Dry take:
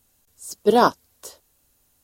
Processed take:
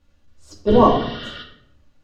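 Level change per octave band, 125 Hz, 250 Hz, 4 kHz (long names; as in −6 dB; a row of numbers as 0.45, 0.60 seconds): +11.5, +6.5, +3.0 decibels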